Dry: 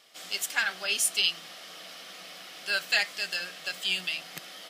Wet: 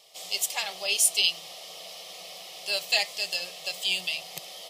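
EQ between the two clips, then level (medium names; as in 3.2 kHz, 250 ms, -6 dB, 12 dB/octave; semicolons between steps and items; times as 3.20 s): static phaser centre 630 Hz, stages 4; +5.0 dB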